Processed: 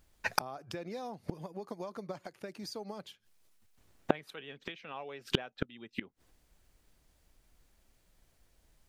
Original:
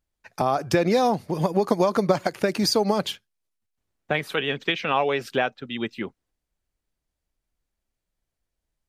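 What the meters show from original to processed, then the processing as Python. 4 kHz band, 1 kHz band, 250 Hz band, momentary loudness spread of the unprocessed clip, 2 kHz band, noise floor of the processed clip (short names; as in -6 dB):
-13.0 dB, -16.0 dB, -15.5 dB, 10 LU, -13.0 dB, -71 dBFS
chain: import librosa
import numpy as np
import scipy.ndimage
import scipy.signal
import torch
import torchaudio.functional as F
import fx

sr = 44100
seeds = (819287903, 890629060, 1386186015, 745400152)

y = fx.gate_flip(x, sr, shuts_db=-25.0, range_db=-35)
y = y * 10.0 ** (14.0 / 20.0)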